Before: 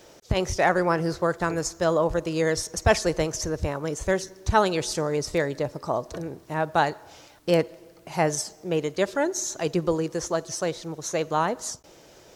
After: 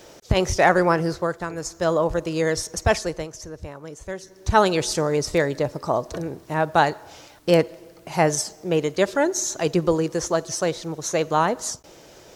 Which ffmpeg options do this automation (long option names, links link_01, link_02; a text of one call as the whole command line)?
ffmpeg -i in.wav -af "volume=24dB,afade=type=out:start_time=0.84:duration=0.67:silence=0.316228,afade=type=in:start_time=1.51:duration=0.37:silence=0.446684,afade=type=out:start_time=2.79:duration=0.51:silence=0.316228,afade=type=in:start_time=4.21:duration=0.41:silence=0.237137" out.wav